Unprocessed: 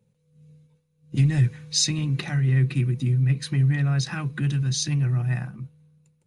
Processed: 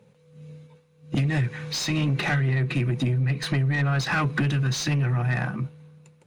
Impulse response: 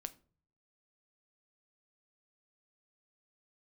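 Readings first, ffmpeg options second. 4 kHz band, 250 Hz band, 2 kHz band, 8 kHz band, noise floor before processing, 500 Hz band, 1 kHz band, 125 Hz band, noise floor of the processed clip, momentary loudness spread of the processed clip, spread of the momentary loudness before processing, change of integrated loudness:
−2.0 dB, +0.5 dB, +7.5 dB, −7.0 dB, −69 dBFS, +6.0 dB, +10.0 dB, −2.0 dB, −59 dBFS, 5 LU, 8 LU, −1.5 dB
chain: -filter_complex "[0:a]acompressor=threshold=-27dB:ratio=6,asplit=2[link_01][link_02];[link_02]highpass=frequency=720:poles=1,volume=21dB,asoftclip=type=tanh:threshold=-19dB[link_03];[link_01][link_03]amix=inputs=2:normalize=0,lowpass=frequency=1600:poles=1,volume=-6dB,volume=5.5dB"

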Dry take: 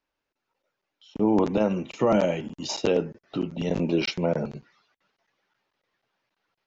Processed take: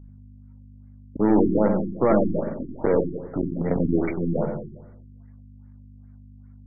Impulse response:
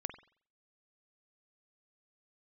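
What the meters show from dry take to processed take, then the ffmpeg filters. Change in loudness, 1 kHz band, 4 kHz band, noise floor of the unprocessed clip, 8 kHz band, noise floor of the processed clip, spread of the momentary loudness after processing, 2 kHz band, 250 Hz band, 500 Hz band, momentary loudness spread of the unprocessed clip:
+2.5 dB, +1.5 dB, below −40 dB, −84 dBFS, can't be measured, −47 dBFS, 11 LU, −3.0 dB, +3.5 dB, +2.0 dB, 11 LU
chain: -filter_complex "[0:a]aeval=exprs='val(0)+0.00562*(sin(2*PI*50*n/s)+sin(2*PI*2*50*n/s)/2+sin(2*PI*3*50*n/s)/3+sin(2*PI*4*50*n/s)/4+sin(2*PI*5*50*n/s)/5)':channel_layout=same,aeval=exprs='0.266*(cos(1*acos(clip(val(0)/0.266,-1,1)))-cos(1*PI/2))+0.0237*(cos(6*acos(clip(val(0)/0.266,-1,1)))-cos(6*PI/2))':channel_layout=same[link_01];[1:a]atrim=start_sample=2205,asetrate=22491,aresample=44100[link_02];[link_01][link_02]afir=irnorm=-1:irlink=0,afftfilt=real='re*lt(b*sr/1024,370*pow(2400/370,0.5+0.5*sin(2*PI*2.5*pts/sr)))':imag='im*lt(b*sr/1024,370*pow(2400/370,0.5+0.5*sin(2*PI*2.5*pts/sr)))':win_size=1024:overlap=0.75"

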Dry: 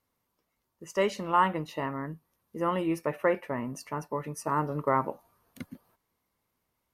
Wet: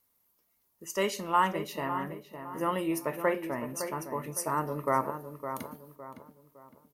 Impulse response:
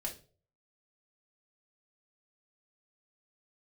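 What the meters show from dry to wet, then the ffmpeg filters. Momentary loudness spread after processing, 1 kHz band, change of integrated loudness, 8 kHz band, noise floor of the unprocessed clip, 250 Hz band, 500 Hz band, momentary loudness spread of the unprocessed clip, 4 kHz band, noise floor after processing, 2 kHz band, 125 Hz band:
18 LU, −1.0 dB, −1.5 dB, +7.0 dB, −81 dBFS, −1.5 dB, −2.0 dB, 20 LU, +2.0 dB, −73 dBFS, −0.5 dB, −3.5 dB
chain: -filter_complex "[0:a]aemphasis=mode=production:type=50fm,asplit=2[link_01][link_02];[link_02]adelay=560,lowpass=frequency=1900:poles=1,volume=-8.5dB,asplit=2[link_03][link_04];[link_04]adelay=560,lowpass=frequency=1900:poles=1,volume=0.39,asplit=2[link_05][link_06];[link_06]adelay=560,lowpass=frequency=1900:poles=1,volume=0.39,asplit=2[link_07][link_08];[link_08]adelay=560,lowpass=frequency=1900:poles=1,volume=0.39[link_09];[link_01][link_03][link_05][link_07][link_09]amix=inputs=5:normalize=0,asplit=2[link_10][link_11];[1:a]atrim=start_sample=2205,lowshelf=frequency=160:gain=-12[link_12];[link_11][link_12]afir=irnorm=-1:irlink=0,volume=-6.5dB[link_13];[link_10][link_13]amix=inputs=2:normalize=0,volume=-4dB"

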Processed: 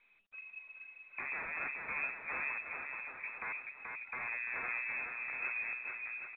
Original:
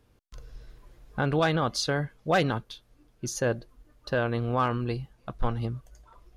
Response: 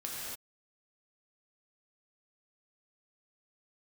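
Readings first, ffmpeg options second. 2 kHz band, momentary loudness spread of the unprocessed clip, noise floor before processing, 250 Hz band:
−1.0 dB, 15 LU, −64 dBFS, −29.5 dB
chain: -af "aeval=exprs='0.0398*(abs(mod(val(0)/0.0398+3,4)-2)-1)':channel_layout=same,aecho=1:1:430|774|1049|1269|1445:0.631|0.398|0.251|0.158|0.1,lowpass=frequency=2200:width_type=q:width=0.5098,lowpass=frequency=2200:width_type=q:width=0.6013,lowpass=frequency=2200:width_type=q:width=0.9,lowpass=frequency=2200:width_type=q:width=2.563,afreqshift=-2600,volume=-7dB" -ar 8000 -c:a pcm_mulaw

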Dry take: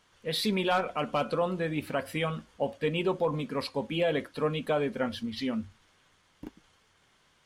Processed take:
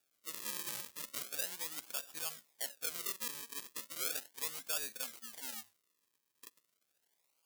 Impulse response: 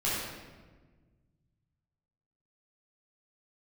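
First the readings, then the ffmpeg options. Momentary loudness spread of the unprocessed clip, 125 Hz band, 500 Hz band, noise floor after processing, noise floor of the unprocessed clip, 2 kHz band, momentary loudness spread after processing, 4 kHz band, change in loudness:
7 LU, −31.0 dB, −25.0 dB, −82 dBFS, −67 dBFS, −11.0 dB, 9 LU, −7.5 dB, −9.0 dB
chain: -af "acrusher=samples=42:mix=1:aa=0.000001:lfo=1:lforange=42:lforate=0.36,aderivative"

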